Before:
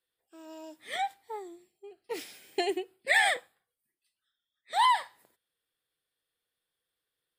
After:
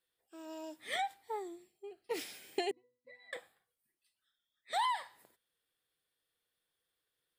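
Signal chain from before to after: compression 4:1, threshold -32 dBFS, peak gain reduction 10.5 dB; 2.71–3.33 s: pitch-class resonator B, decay 0.39 s

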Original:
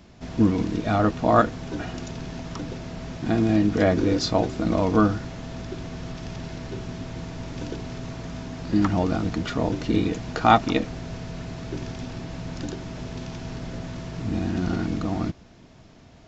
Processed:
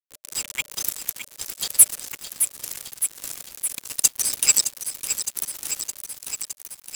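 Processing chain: spectral contrast enhancement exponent 1.5; inverse Chebyshev high-pass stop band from 700 Hz, stop band 70 dB; companded quantiser 4-bit; saturation -25.5 dBFS, distortion -9 dB; frequency shift -260 Hz; speed mistake 33 rpm record played at 78 rpm; loudness maximiser +29.5 dB; bit-crushed delay 614 ms, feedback 80%, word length 6-bit, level -9 dB; trim -1 dB

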